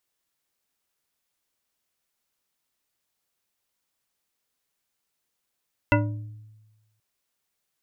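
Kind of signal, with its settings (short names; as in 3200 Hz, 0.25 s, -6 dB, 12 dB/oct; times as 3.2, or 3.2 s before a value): glass hit bar, length 1.08 s, lowest mode 108 Hz, modes 7, decay 1.22 s, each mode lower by 0.5 dB, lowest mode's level -19 dB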